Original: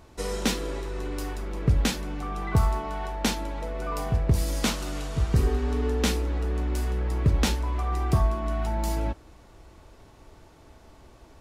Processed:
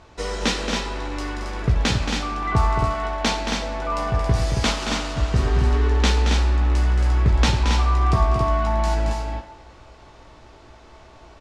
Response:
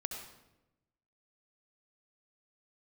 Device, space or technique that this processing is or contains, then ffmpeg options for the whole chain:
filtered reverb send: -filter_complex "[0:a]lowpass=6700,asplit=2[link_01][link_02];[link_02]highpass=430,lowpass=8600[link_03];[1:a]atrim=start_sample=2205[link_04];[link_03][link_04]afir=irnorm=-1:irlink=0,volume=-1.5dB[link_05];[link_01][link_05]amix=inputs=2:normalize=0,asplit=2[link_06][link_07];[link_07]adelay=17,volume=-8dB[link_08];[link_06][link_08]amix=inputs=2:normalize=0,aecho=1:1:224.5|274.1:0.447|0.562,volume=1dB"

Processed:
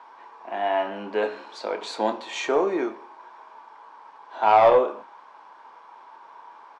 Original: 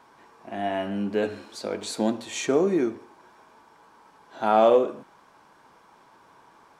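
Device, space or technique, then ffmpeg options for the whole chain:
intercom: -filter_complex "[0:a]highpass=460,lowpass=4000,equalizer=frequency=940:width_type=o:width=0.53:gain=8,asoftclip=type=tanh:threshold=-12dB,asplit=2[link_01][link_02];[link_02]adelay=28,volume=-10.5dB[link_03];[link_01][link_03]amix=inputs=2:normalize=0,volume=3dB"

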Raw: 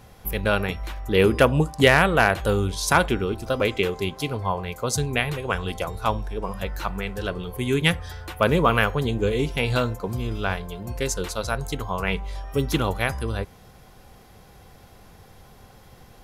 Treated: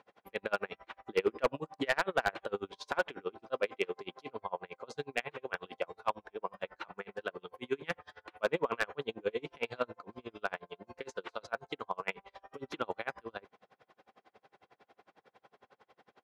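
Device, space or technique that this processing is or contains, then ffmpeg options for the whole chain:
helicopter radio: -af "highpass=380,lowpass=2700,aeval=exprs='val(0)*pow(10,-34*(0.5-0.5*cos(2*PI*11*n/s))/20)':channel_layout=same,asoftclip=type=hard:threshold=-17dB,volume=-3dB"

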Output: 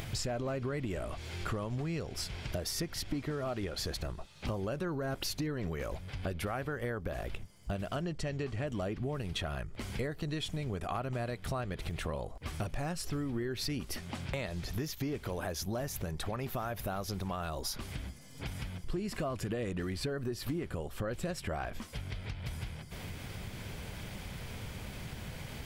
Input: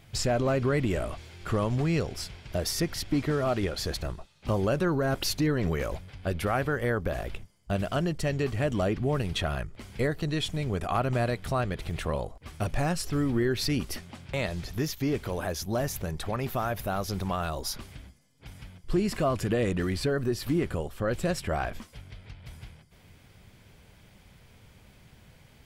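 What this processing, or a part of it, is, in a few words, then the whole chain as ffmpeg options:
upward and downward compression: -filter_complex "[0:a]acompressor=mode=upward:threshold=-30dB:ratio=2.5,acompressor=threshold=-33dB:ratio=5,asettb=1/sr,asplit=3[link_01][link_02][link_03];[link_01]atrim=end=8.014[link_04];[link_02]atrim=start=8.01:end=8.67,asetpts=PTS-STARTPTS,afade=type=in:duration=0.004:curve=qsin,afade=type=out:start_time=0.656:duration=0.004:curve=qsin,lowpass=7500[link_05];[link_03]atrim=start=8.666[link_06];[link_04][link_05]acrossfade=duration=0.004:curve1=hsin:curve2=qsin[link_07];[link_07][link_06]acrossfade=duration=0.004:curve1=qsin:curve2=hsin"

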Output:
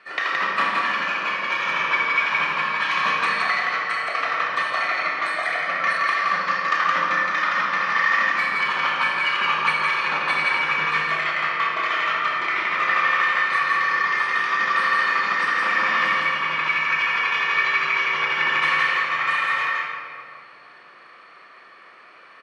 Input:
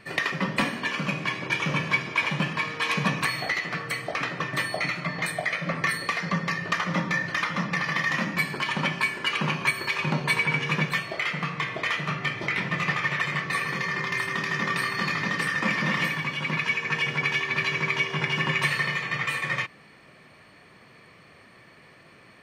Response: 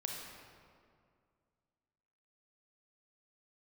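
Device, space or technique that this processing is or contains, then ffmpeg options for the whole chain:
station announcement: -filter_complex "[0:a]highpass=470,lowpass=4100,equalizer=frequency=1300:width_type=o:width=0.56:gain=9.5,highshelf=frequency=4800:gain=6,aecho=1:1:32.07|169.1:0.355|0.794[link_01];[1:a]atrim=start_sample=2205[link_02];[link_01][link_02]afir=irnorm=-1:irlink=0"

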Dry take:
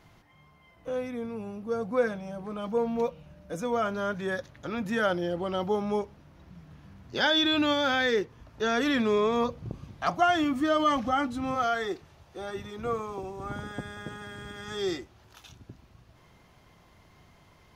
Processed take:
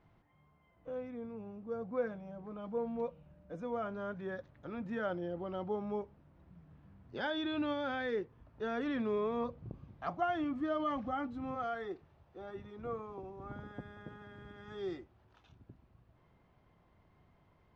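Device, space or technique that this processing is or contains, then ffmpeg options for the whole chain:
phone in a pocket: -af "lowpass=4000,highshelf=frequency=2000:gain=-11,volume=-8.5dB"

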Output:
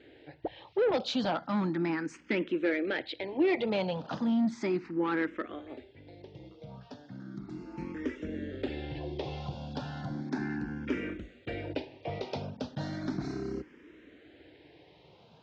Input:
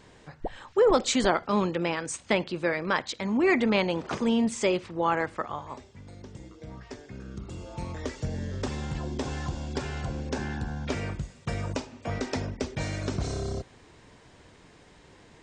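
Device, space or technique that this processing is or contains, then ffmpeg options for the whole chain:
barber-pole phaser into a guitar amplifier: -filter_complex "[0:a]asplit=2[link_01][link_02];[link_02]afreqshift=0.35[link_03];[link_01][link_03]amix=inputs=2:normalize=1,asoftclip=type=tanh:threshold=-23dB,highpass=91,equalizer=frequency=94:width_type=q:width=4:gain=-7,equalizer=frequency=310:width_type=q:width=4:gain=9,equalizer=frequency=1100:width_type=q:width=4:gain=-7,lowpass=frequency=4300:width=0.5412,lowpass=frequency=4300:width=1.3066"

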